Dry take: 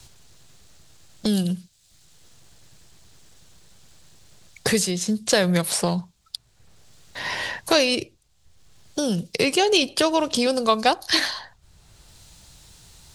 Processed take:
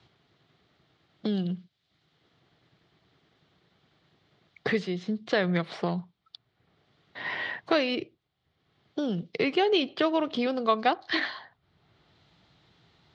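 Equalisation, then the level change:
dynamic equaliser 1,900 Hz, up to +3 dB, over −31 dBFS, Q 0.99
loudspeaker in its box 170–3,100 Hz, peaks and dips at 210 Hz −3 dB, 540 Hz −6 dB, 940 Hz −6 dB, 1,600 Hz −5 dB, 2,600 Hz −8 dB
−2.5 dB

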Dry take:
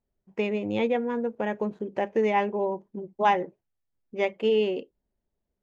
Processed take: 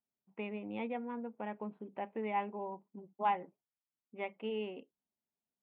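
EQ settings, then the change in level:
high-frequency loss of the air 230 metres
loudspeaker in its box 230–3,100 Hz, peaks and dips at 360 Hz −9 dB, 570 Hz −7 dB, 1,700 Hz −8 dB
parametric band 460 Hz −5.5 dB 0.27 octaves
−7.0 dB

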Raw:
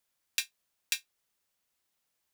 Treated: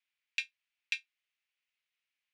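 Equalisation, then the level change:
resonant band-pass 2,400 Hz, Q 2.8
high-frequency loss of the air 73 metres
spectral tilt +2 dB per octave
+1.5 dB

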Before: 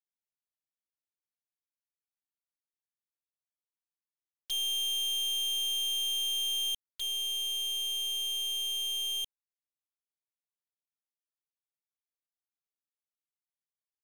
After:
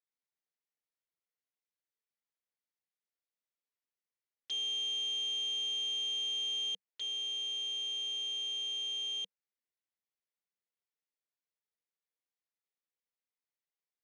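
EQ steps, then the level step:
loudspeaker in its box 190–6,000 Hz, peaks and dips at 190 Hz +6 dB, 480 Hz +8 dB, 2,000 Hz +6 dB
−3.5 dB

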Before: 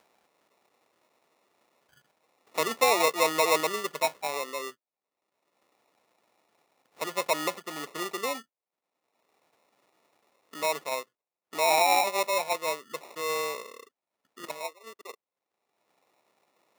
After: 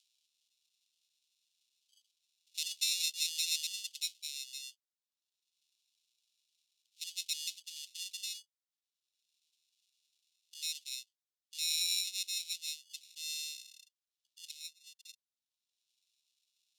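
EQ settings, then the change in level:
Butterworth high-pass 2,900 Hz 48 dB per octave
resonant band-pass 4,600 Hz, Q 0.65
0.0 dB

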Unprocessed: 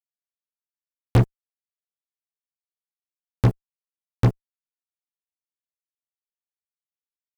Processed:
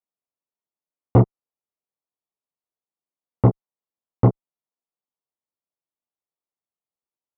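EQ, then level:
Savitzky-Golay smoothing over 65 samples
high-pass filter 190 Hz 6 dB per octave
high-frequency loss of the air 270 metres
+7.5 dB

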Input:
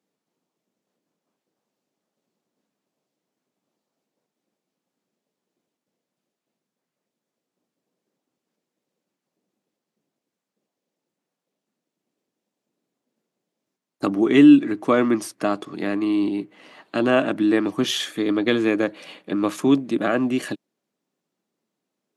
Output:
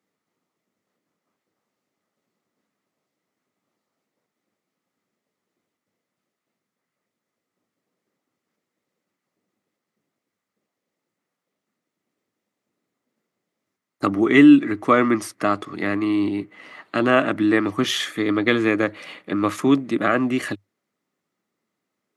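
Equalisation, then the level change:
thirty-one-band graphic EQ 100 Hz +11 dB, 1,250 Hz +8 dB, 2,000 Hz +9 dB
0.0 dB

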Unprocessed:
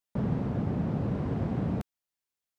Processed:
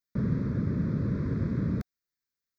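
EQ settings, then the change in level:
notch filter 730 Hz, Q 12
phaser with its sweep stopped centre 2,900 Hz, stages 6
+2.0 dB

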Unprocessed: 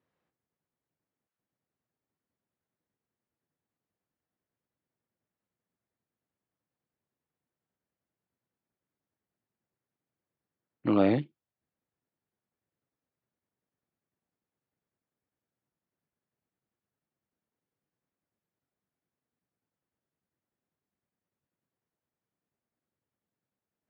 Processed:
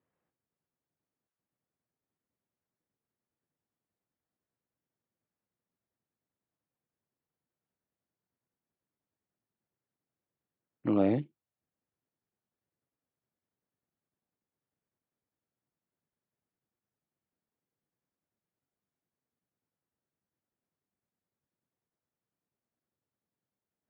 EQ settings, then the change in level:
dynamic equaliser 1,400 Hz, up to −6 dB, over −41 dBFS, Q 1.1
Gaussian smoothing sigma 2.6 samples
−2.0 dB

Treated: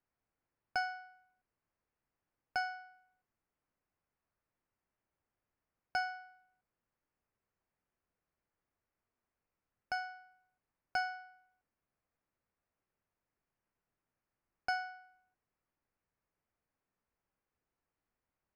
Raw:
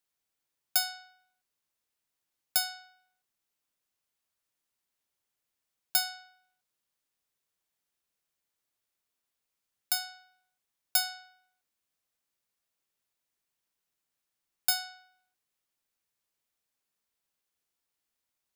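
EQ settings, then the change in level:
moving average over 12 samples
high-frequency loss of the air 110 metres
low-shelf EQ 140 Hz +7 dB
+4.0 dB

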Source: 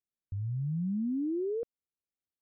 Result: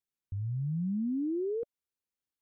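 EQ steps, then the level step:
Butterworth band-reject 640 Hz, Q 4.4
0.0 dB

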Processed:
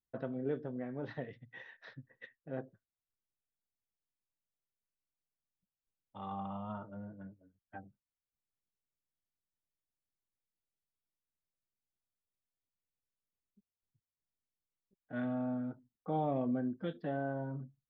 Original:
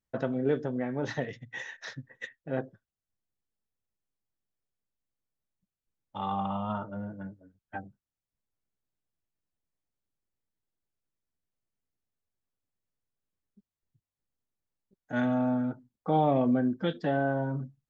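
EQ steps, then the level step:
Butterworth low-pass 4,600 Hz
high-shelf EQ 2,100 Hz −7.5 dB
notch filter 860 Hz, Q 17
−8.5 dB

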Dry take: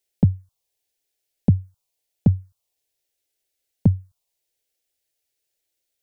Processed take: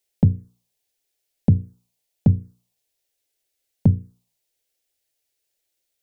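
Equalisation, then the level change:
mains-hum notches 60/120/180/240/300/360/420/480 Hz
+1.5 dB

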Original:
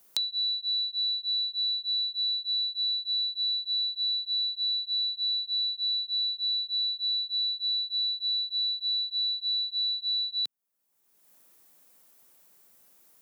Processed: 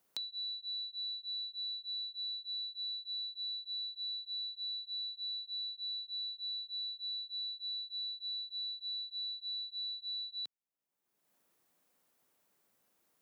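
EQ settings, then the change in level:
high-shelf EQ 5,300 Hz −9.5 dB
−8.0 dB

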